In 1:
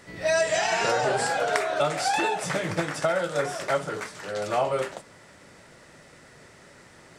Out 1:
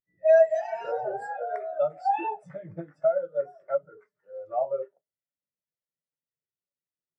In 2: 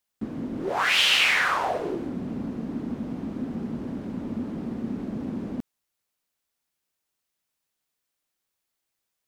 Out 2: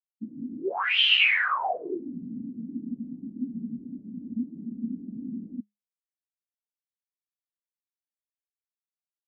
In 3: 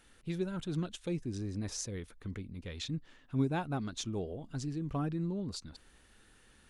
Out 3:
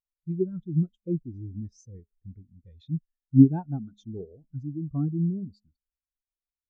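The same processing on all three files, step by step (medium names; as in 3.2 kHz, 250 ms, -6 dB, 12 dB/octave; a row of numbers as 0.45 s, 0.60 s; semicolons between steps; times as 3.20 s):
de-hum 206.9 Hz, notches 3; spectral contrast expander 2.5:1; normalise loudness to -27 LUFS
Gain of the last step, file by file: -2.0 dB, 0.0 dB, +16.5 dB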